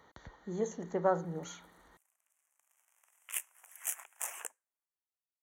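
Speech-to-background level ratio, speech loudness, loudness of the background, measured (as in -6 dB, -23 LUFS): 4.5 dB, -35.5 LUFS, -40.0 LUFS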